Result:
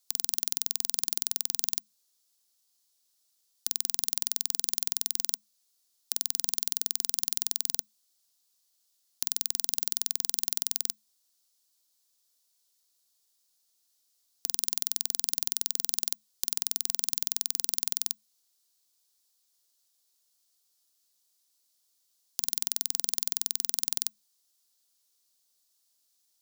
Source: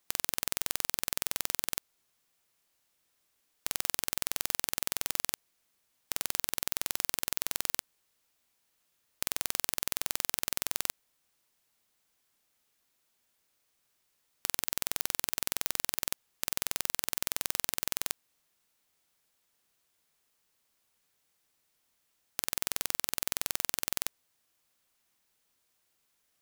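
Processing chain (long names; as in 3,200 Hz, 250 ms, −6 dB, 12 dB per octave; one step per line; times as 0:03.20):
high shelf with overshoot 3,000 Hz +12 dB, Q 1.5
frequency shifter +210 Hz
level −9 dB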